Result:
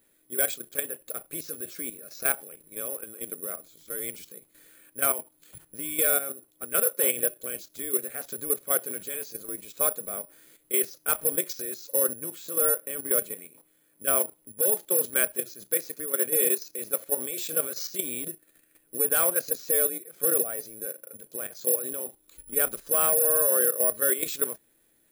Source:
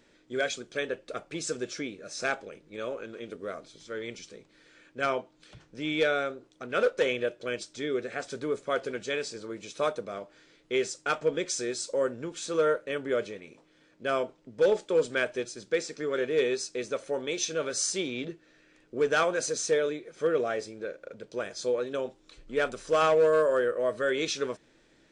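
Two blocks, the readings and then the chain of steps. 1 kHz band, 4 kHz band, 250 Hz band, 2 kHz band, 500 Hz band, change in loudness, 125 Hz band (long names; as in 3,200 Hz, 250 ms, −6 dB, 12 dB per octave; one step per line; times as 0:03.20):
−4.0 dB, −4.5 dB, −4.5 dB, −3.5 dB, −4.5 dB, +4.5 dB, −4.5 dB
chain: bad sample-rate conversion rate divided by 4×, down filtered, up zero stuff
output level in coarse steps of 11 dB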